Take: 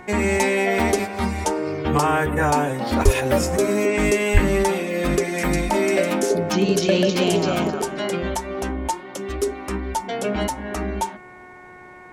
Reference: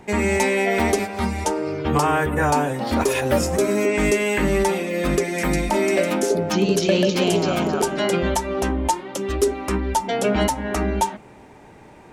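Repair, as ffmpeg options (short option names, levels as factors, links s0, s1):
-filter_complex "[0:a]bandreject=f=364.5:t=h:w=4,bandreject=f=729:t=h:w=4,bandreject=f=1093.5:t=h:w=4,bandreject=f=1458:t=h:w=4,bandreject=f=1822.5:t=h:w=4,bandreject=f=2187:t=h:w=4,asplit=3[s0][s1][s2];[s0]afade=t=out:st=3.04:d=0.02[s3];[s1]highpass=f=140:w=0.5412,highpass=f=140:w=1.3066,afade=t=in:st=3.04:d=0.02,afade=t=out:st=3.16:d=0.02[s4];[s2]afade=t=in:st=3.16:d=0.02[s5];[s3][s4][s5]amix=inputs=3:normalize=0,asplit=3[s6][s7][s8];[s6]afade=t=out:st=4.33:d=0.02[s9];[s7]highpass=f=140:w=0.5412,highpass=f=140:w=1.3066,afade=t=in:st=4.33:d=0.02,afade=t=out:st=4.45:d=0.02[s10];[s8]afade=t=in:st=4.45:d=0.02[s11];[s9][s10][s11]amix=inputs=3:normalize=0,asetnsamples=n=441:p=0,asendcmd='7.7 volume volume 4dB',volume=1"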